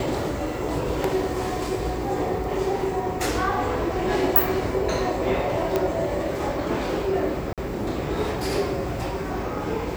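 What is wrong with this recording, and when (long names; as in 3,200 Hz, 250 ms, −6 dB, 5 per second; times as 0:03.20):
0:05.76: click −9 dBFS
0:07.53–0:07.58: drop-out 47 ms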